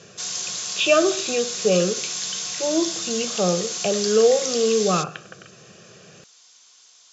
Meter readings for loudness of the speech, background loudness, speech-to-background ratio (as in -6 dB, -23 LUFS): -22.0 LUFS, -26.0 LUFS, 4.0 dB